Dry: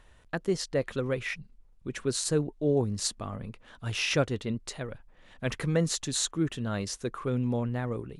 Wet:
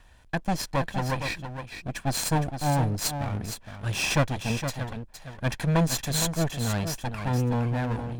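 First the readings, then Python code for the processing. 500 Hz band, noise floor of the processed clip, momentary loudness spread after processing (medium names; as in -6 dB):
-2.0 dB, -53 dBFS, 11 LU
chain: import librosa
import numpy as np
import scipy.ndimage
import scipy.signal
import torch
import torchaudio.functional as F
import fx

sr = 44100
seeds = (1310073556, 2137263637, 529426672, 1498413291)

y = fx.lower_of_two(x, sr, delay_ms=1.2)
y = y + 10.0 ** (-8.5 / 20.0) * np.pad(y, (int(464 * sr / 1000.0), 0))[:len(y)]
y = y * librosa.db_to_amplitude(4.0)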